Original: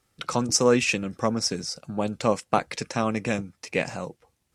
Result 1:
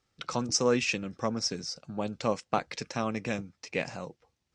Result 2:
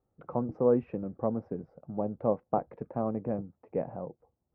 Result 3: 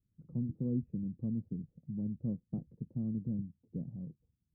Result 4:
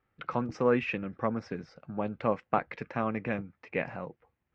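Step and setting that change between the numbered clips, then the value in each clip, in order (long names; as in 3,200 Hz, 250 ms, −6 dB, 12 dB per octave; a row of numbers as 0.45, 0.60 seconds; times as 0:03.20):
transistor ladder low-pass, frequency: 7,400, 950, 250, 2,600 Hertz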